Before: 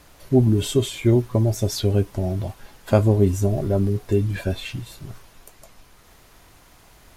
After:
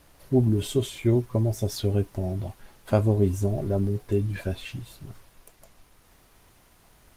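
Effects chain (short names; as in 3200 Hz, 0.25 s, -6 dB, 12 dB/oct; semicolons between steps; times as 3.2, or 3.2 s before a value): gain -4.5 dB; Opus 24 kbps 48000 Hz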